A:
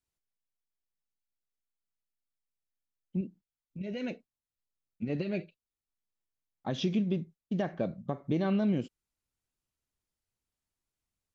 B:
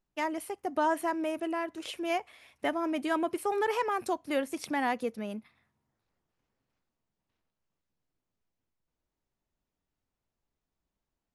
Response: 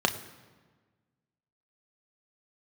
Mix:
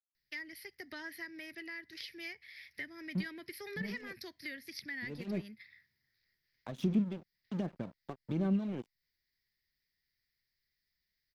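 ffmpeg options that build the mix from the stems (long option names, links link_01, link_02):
-filter_complex "[0:a]aphaser=in_gain=1:out_gain=1:delay=2.7:decay=0.54:speed=1.3:type=sinusoidal,aeval=exprs='sgn(val(0))*max(abs(val(0))-0.0106,0)':channel_layout=same,volume=-0.5dB[link_01];[1:a]firequalizer=gain_entry='entry(110,0);entry(270,-13);entry(390,-10);entry(740,-21);entry(1200,-15);entry(1900,14);entry(2700,-2);entry(4900,15);entry(7400,-20);entry(12000,6)':delay=0.05:min_phase=1,adelay=150,volume=1.5dB[link_02];[link_01][link_02]amix=inputs=2:normalize=0,lowshelf=frequency=180:gain=-8.5,acrossover=split=300[link_03][link_04];[link_04]acompressor=threshold=-47dB:ratio=3[link_05];[link_03][link_05]amix=inputs=2:normalize=0"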